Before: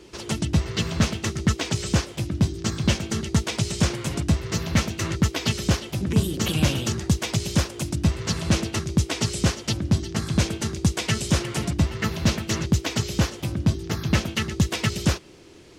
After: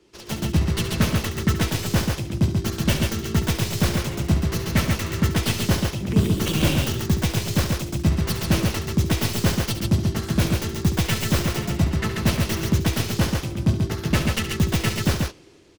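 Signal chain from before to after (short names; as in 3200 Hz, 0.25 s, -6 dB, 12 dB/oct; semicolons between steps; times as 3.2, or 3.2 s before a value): tracing distortion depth 0.14 ms; loudspeakers at several distances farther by 24 m -10 dB, 47 m -3 dB; three-band expander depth 40%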